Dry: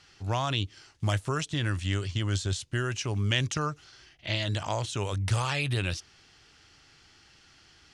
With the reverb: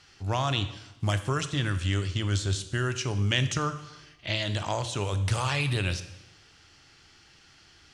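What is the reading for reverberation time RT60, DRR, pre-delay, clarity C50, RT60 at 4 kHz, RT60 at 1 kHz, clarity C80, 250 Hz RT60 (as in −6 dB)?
0.95 s, 10.0 dB, 16 ms, 12.0 dB, 0.90 s, 0.95 s, 14.0 dB, 1.0 s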